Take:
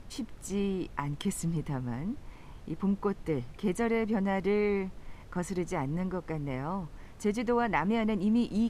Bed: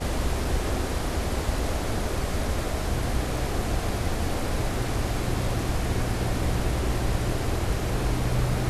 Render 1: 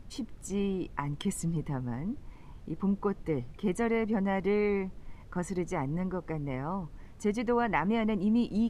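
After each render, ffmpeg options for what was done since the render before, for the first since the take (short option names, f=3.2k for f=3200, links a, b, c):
-af "afftdn=nr=6:nf=-49"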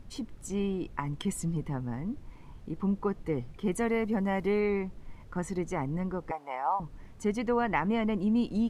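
-filter_complex "[0:a]asettb=1/sr,asplit=3[a][b][c];[a]atrim=end=3.724[d];[b]atrim=start=3.72:end=4.6,asetpts=PTS-STARTPTS,afade=t=in:d=0.004:c=qsin,afade=t=out:st=0.876:d=0.004:c=qsin,highshelf=f=9.5k:g=11[e];[c]atrim=start=4.596[f];[d][e]acrossfade=d=0.004:c1=hsin:c2=qsin[g];[g][f]acrossfade=d=0.004:c1=qsin:c2=hsin,asettb=1/sr,asplit=3[h][i][j];[h]atrim=end=6.314[k];[i]atrim=start=6.31:end=6.8,asetpts=PTS-STARTPTS,afade=t=in:d=0.004:c=qsin,afade=t=out:st=0.486:d=0.004:c=qsin,highpass=f=810:t=q:w=4.5[l];[j]atrim=start=6.796[m];[k][l]acrossfade=d=0.004:c1=hsin:c2=qsin[n];[n][m]acrossfade=d=0.004:c1=qsin:c2=hsin"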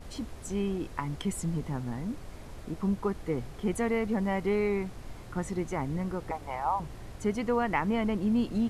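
-filter_complex "[1:a]volume=-20dB[a];[0:a][a]amix=inputs=2:normalize=0"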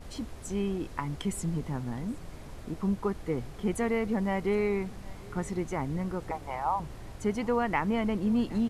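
-af "aecho=1:1:767:0.0708"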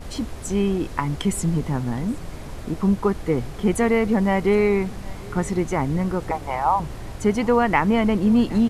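-af "volume=9.5dB"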